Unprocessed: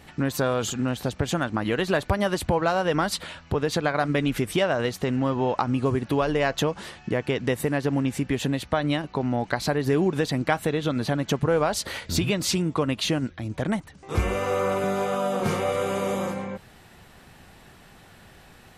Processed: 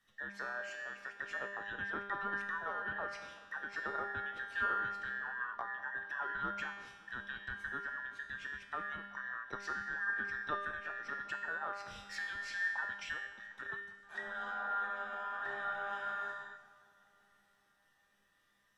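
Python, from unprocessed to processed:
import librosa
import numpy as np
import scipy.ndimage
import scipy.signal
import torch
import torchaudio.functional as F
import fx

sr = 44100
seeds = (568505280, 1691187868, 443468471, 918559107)

p1 = fx.band_invert(x, sr, width_hz=2000)
p2 = fx.env_lowpass_down(p1, sr, base_hz=1900.0, full_db=-19.5)
p3 = fx.comb_fb(p2, sr, f0_hz=200.0, decay_s=1.4, harmonics='all', damping=0.0, mix_pct=90)
p4 = p3 + fx.echo_bbd(p3, sr, ms=188, stages=2048, feedback_pct=81, wet_db=-15.5, dry=0)
p5 = fx.band_widen(p4, sr, depth_pct=40)
y = p5 * librosa.db_to_amplitude(1.0)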